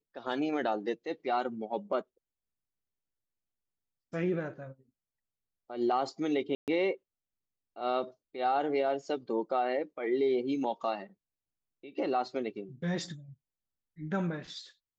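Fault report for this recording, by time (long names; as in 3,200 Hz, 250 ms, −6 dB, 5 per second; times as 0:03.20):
0:06.55–0:06.68: drop-out 128 ms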